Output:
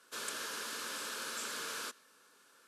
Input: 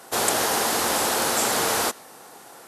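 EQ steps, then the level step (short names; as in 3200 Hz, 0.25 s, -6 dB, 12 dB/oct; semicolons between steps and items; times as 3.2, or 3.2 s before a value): double band-pass 760 Hz, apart 2.5 oct; tilt +2.5 dB/oct; fixed phaser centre 790 Hz, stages 4; +5.0 dB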